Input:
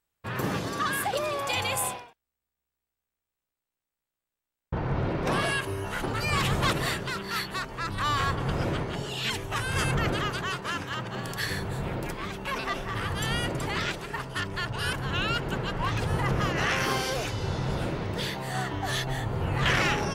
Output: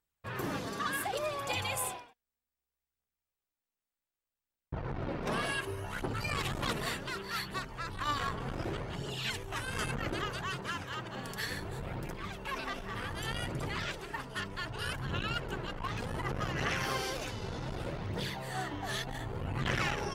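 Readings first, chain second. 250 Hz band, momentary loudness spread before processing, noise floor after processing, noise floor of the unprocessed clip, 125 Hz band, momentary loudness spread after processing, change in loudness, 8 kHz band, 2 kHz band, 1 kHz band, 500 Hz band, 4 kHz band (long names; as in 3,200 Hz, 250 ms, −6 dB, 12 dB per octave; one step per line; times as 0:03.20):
−7.5 dB, 7 LU, below −85 dBFS, below −85 dBFS, −8.5 dB, 6 LU, −7.5 dB, −6.5 dB, −7.0 dB, −7.0 dB, −7.0 dB, −7.0 dB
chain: phase shifter 0.66 Hz, delay 4.9 ms, feedback 38%
saturating transformer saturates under 410 Hz
level −6.5 dB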